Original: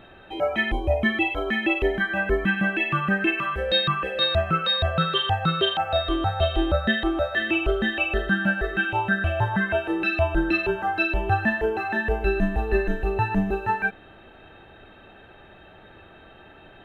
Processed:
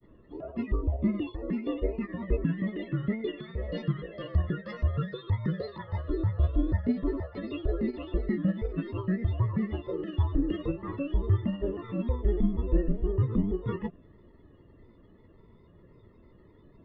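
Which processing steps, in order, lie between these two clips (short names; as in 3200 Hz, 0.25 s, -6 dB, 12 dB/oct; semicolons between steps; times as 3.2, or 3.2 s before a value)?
formant shift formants +3 st; grains, grains 20/s, spray 10 ms, pitch spread up and down by 3 st; running mean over 57 samples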